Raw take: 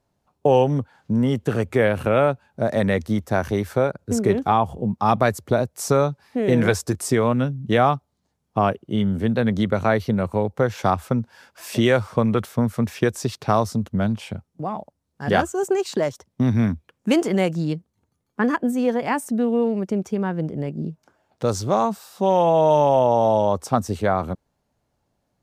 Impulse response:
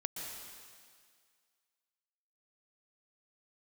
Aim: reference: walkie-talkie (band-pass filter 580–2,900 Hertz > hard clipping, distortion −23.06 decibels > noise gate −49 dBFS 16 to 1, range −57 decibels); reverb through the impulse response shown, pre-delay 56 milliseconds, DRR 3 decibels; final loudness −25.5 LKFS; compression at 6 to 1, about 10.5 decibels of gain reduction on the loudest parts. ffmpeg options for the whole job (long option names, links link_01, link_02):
-filter_complex "[0:a]acompressor=threshold=-24dB:ratio=6,asplit=2[link_01][link_02];[1:a]atrim=start_sample=2205,adelay=56[link_03];[link_02][link_03]afir=irnorm=-1:irlink=0,volume=-4dB[link_04];[link_01][link_04]amix=inputs=2:normalize=0,highpass=580,lowpass=2900,asoftclip=type=hard:threshold=-20.5dB,agate=range=-57dB:threshold=-49dB:ratio=16,volume=8.5dB"